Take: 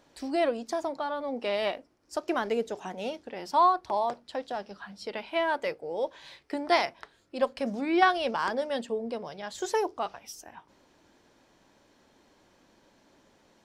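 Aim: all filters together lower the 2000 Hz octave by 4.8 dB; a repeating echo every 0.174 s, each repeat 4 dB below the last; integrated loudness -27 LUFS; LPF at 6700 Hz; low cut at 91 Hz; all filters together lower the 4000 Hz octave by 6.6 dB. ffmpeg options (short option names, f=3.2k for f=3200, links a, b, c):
-af "highpass=91,lowpass=6.7k,equalizer=f=2k:t=o:g=-5,equalizer=f=4k:t=o:g=-6.5,aecho=1:1:174|348|522|696|870|1044|1218|1392|1566:0.631|0.398|0.25|0.158|0.0994|0.0626|0.0394|0.0249|0.0157,volume=2dB"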